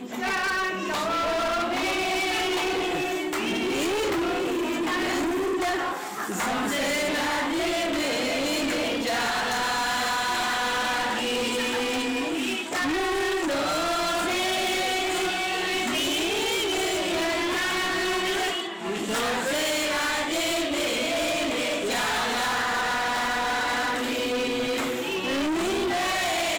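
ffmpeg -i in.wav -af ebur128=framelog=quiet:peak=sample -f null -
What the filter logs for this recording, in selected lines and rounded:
Integrated loudness:
  I:         -25.2 LUFS
  Threshold: -35.2 LUFS
Loudness range:
  LRA:         1.2 LU
  Threshold: -45.2 LUFS
  LRA low:   -25.8 LUFS
  LRA high:  -24.6 LUFS
Sample peak:
  Peak:      -24.0 dBFS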